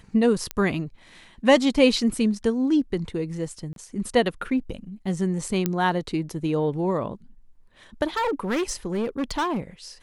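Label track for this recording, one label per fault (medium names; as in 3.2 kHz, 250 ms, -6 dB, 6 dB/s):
0.510000	0.510000	pop -12 dBFS
3.730000	3.760000	dropout 32 ms
5.660000	5.660000	pop -9 dBFS
8.160000	9.600000	clipped -21.5 dBFS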